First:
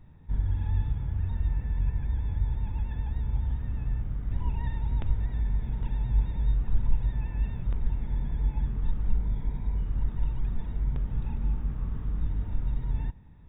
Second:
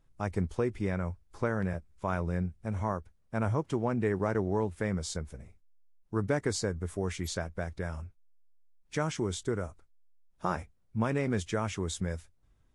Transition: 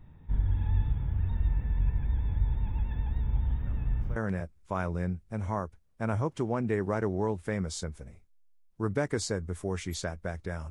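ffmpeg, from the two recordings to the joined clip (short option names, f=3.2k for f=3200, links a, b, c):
-filter_complex "[1:a]asplit=2[a][b];[0:a]apad=whole_dur=10.7,atrim=end=10.7,atrim=end=4.162[c];[b]atrim=start=1.488:end=8.03[d];[a]atrim=start=0.99:end=1.49,asetpts=PTS-STARTPTS,volume=-18dB,afade=t=in:d=0.004:c=hsin,afade=t=out:st=0.496:d=0.004:c=hsin,adelay=3660[e];[c][d]acrossfade=d=0.004:c1=hsin:c2=hsin[f];[f][e]amix=inputs=2:normalize=0"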